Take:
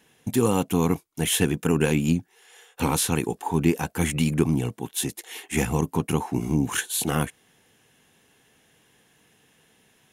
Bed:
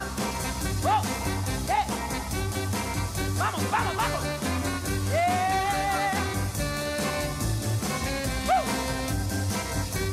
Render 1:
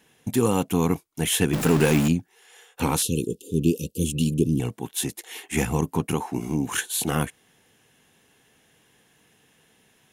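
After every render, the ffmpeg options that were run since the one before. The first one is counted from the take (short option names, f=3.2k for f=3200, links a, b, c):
-filter_complex "[0:a]asettb=1/sr,asplit=3[a][b][c];[a]atrim=end=1.534[d];[b]atrim=start=1.53:end=2.08,asetpts=PTS-STARTPTS,afade=t=in:d=0.004:c=qsin,afade=t=out:st=0.546:d=0.004:c=qsin,aeval=exprs='val(0)+0.5*0.0794*sgn(val(0))':c=same[e];[c]atrim=start=2.076[f];[d][e]acrossfade=d=0.004:c1=hsin:c2=qsin[g];[g][f]acrossfade=d=0.004:c1=qsin:c2=hsin,asettb=1/sr,asplit=3[h][i][j];[h]atrim=end=3.024[k];[i]atrim=start=3.02:end=4.6,asetpts=PTS-STARTPTS,afade=t=in:d=0.004:c=qsin,afade=t=out:st=1.576:d=0.004:c=qsin,asuperstop=centerf=1200:order=20:qfactor=0.55[l];[j]atrim=start=4.596[m];[k][l]acrossfade=d=0.004:c1=hsin:c2=qsin[n];[n][m]acrossfade=d=0.004:c1=qsin:c2=hsin,asettb=1/sr,asplit=3[o][p][q];[o]atrim=end=6.144[r];[p]atrim=start=6.14:end=6.7,asetpts=PTS-STARTPTS,afade=t=in:d=0.004:c=qsin,afade=t=out:st=0.556:d=0.004:c=qsin,lowshelf=f=140:g=-8.5[s];[q]atrim=start=6.696[t];[r][s]acrossfade=d=0.004:c1=hsin:c2=qsin[u];[u][t]acrossfade=d=0.004:c1=qsin:c2=hsin"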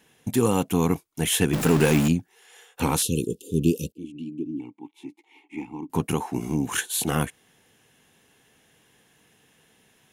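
-filter_complex "[0:a]asettb=1/sr,asplit=3[a][b][c];[a]atrim=end=3.924[d];[b]atrim=start=3.92:end=5.9,asetpts=PTS-STARTPTS,afade=t=in:d=0.004:c=qsin,afade=t=out:st=1.976:d=0.004:c=qsin,asplit=3[e][f][g];[e]bandpass=f=300:t=q:w=8,volume=0dB[h];[f]bandpass=f=870:t=q:w=8,volume=-6dB[i];[g]bandpass=f=2.24k:t=q:w=8,volume=-9dB[j];[h][i][j]amix=inputs=3:normalize=0[k];[c]atrim=start=5.896[l];[d][k]acrossfade=d=0.004:c1=hsin:c2=qsin[m];[m][l]acrossfade=d=0.004:c1=qsin:c2=hsin"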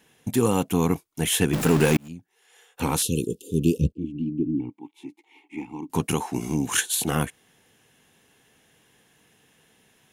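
-filter_complex "[0:a]asettb=1/sr,asplit=3[a][b][c];[a]atrim=end=3.774[d];[b]atrim=start=3.77:end=4.7,asetpts=PTS-STARTPTS,afade=t=in:d=0.004:c=qsin,afade=t=out:st=0.926:d=0.004:c=qsin,aemphasis=mode=reproduction:type=riaa[e];[c]atrim=start=4.696[f];[d][e]acrossfade=d=0.004:c1=hsin:c2=qsin[g];[g][f]acrossfade=d=0.004:c1=qsin:c2=hsin,asettb=1/sr,asplit=3[h][i][j];[h]atrim=end=5.694[k];[i]atrim=start=5.69:end=6.95,asetpts=PTS-STARTPTS,afade=t=in:d=0.004:c=qsin,afade=t=out:st=1.256:d=0.004:c=qsin,equalizer=f=6k:w=0.43:g=6[l];[j]atrim=start=6.946[m];[k][l]acrossfade=d=0.004:c1=hsin:c2=qsin[n];[n][m]acrossfade=d=0.004:c1=qsin:c2=hsin,asplit=2[o][p];[o]atrim=end=1.97,asetpts=PTS-STARTPTS,afade=t=out:st=1.966:d=0.004:c=hsin[q];[p]atrim=start=1.97,asetpts=PTS-STARTPTS,afade=t=in:d=1.07[r];[q][r]concat=n=2:v=0:a=1"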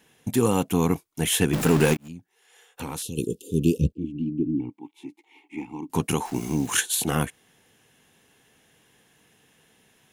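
-filter_complex "[0:a]asplit=3[a][b][c];[a]afade=t=out:st=1.93:d=0.02[d];[b]acompressor=threshold=-33dB:ratio=2.5:attack=3.2:release=140:knee=1:detection=peak,afade=t=in:st=1.93:d=0.02,afade=t=out:st=3.17:d=0.02[e];[c]afade=t=in:st=3.17:d=0.02[f];[d][e][f]amix=inputs=3:normalize=0,asettb=1/sr,asplit=3[g][h][i];[g]atrim=end=6.254[j];[h]atrim=start=6.25:end=6.8,asetpts=PTS-STARTPTS,afade=t=in:d=0.004:c=qsin,afade=t=out:st=0.546:d=0.004:c=qsin,acrusher=bits=8:dc=4:mix=0:aa=0.000001[k];[i]atrim=start=6.796[l];[j][k]acrossfade=d=0.004:c1=hsin:c2=qsin[m];[m][l]acrossfade=d=0.004:c1=qsin:c2=hsin"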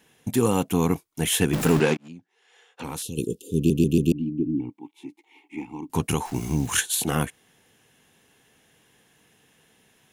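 -filter_complex "[0:a]asplit=3[a][b][c];[a]afade=t=out:st=1.79:d=0.02[d];[b]highpass=180,lowpass=5.4k,afade=t=in:st=1.79:d=0.02,afade=t=out:st=2.83:d=0.02[e];[c]afade=t=in:st=2.83:d=0.02[f];[d][e][f]amix=inputs=3:normalize=0,asettb=1/sr,asplit=3[g][h][i];[g]atrim=end=5.614[j];[h]atrim=start=5.61:end=6.95,asetpts=PTS-STARTPTS,afade=t=in:d=0.004:c=qsin,afade=t=out:st=1.336:d=0.004:c=qsin,asubboost=boost=9.5:cutoff=130[k];[i]atrim=start=6.946[l];[j][k]acrossfade=d=0.004:c1=hsin:c2=qsin[m];[m][l]acrossfade=d=0.004:c1=qsin:c2=hsin,asplit=5[n][o][p][q][r];[n]atrim=end=3.702[s];[o]atrim=start=3.558:end=3.702[t];[p]atrim=start=3.558:end=3.702[u];[q]atrim=start=3.558:end=3.702[v];[r]atrim=start=4.118[w];[s][t]acrossfade=d=0.004:c1=hsin:c2=hsin[x];[x][u]acrossfade=d=0.004:c1=hsin:c2=hsin[y];[y][v]acrossfade=d=0.004:c1=hsin:c2=hsin[z];[z][w]acrossfade=d=0.004:c1=hsin:c2=hsin"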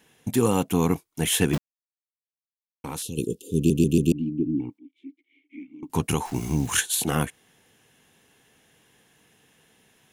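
-filter_complex "[0:a]asettb=1/sr,asplit=3[a][b][c];[a]atrim=end=3.554[d];[b]atrim=start=3.55:end=4.2,asetpts=PTS-STARTPTS,afade=t=in:d=0.004:c=qsin,afade=t=out:st=0.646:d=0.004:c=qsin,equalizer=f=8.1k:t=o:w=0.75:g=5[e];[c]atrim=start=4.196[f];[d][e]acrossfade=d=0.004:c1=hsin:c2=qsin[g];[g][f]acrossfade=d=0.004:c1=qsin:c2=hsin,asettb=1/sr,asplit=3[h][i][j];[h]atrim=end=4.784[k];[i]atrim=start=4.78:end=5.83,asetpts=PTS-STARTPTS,afade=t=in:d=0.004:c=qsin,afade=t=out:st=1.046:d=0.004:c=qsin,asplit=3[l][m][n];[l]bandpass=f=270:t=q:w=8,volume=0dB[o];[m]bandpass=f=2.29k:t=q:w=8,volume=-6dB[p];[n]bandpass=f=3.01k:t=q:w=8,volume=-9dB[q];[o][p][q]amix=inputs=3:normalize=0[r];[j]atrim=start=5.826[s];[k][r]acrossfade=d=0.004:c1=hsin:c2=qsin[t];[t][s]acrossfade=d=0.004:c1=qsin:c2=hsin,asplit=3[u][v][w];[u]atrim=end=1.58,asetpts=PTS-STARTPTS,afade=t=out:st=1.576:d=0.004:c=hsin[x];[v]atrim=start=1.58:end=2.84,asetpts=PTS-STARTPTS,volume=0[y];[w]atrim=start=2.84,asetpts=PTS-STARTPTS,afade=t=in:d=0.004:c=hsin[z];[x][y][z]concat=n=3:v=0:a=1"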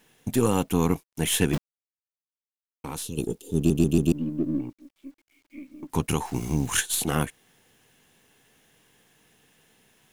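-af "aeval=exprs='if(lt(val(0),0),0.708*val(0),val(0))':c=same,acrusher=bits=10:mix=0:aa=0.000001"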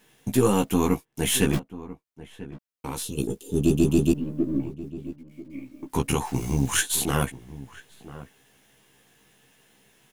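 -filter_complex "[0:a]asplit=2[a][b];[b]adelay=15,volume=-4dB[c];[a][c]amix=inputs=2:normalize=0,asplit=2[d][e];[e]adelay=991.3,volume=-16dB,highshelf=f=4k:g=-22.3[f];[d][f]amix=inputs=2:normalize=0"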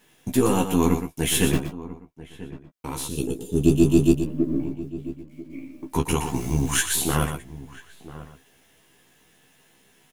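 -filter_complex "[0:a]asplit=2[a][b];[b]adelay=12,volume=-8dB[c];[a][c]amix=inputs=2:normalize=0,aecho=1:1:119:0.376"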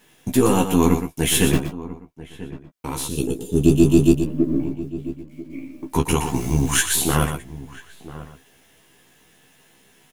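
-af "volume=3.5dB,alimiter=limit=-3dB:level=0:latency=1"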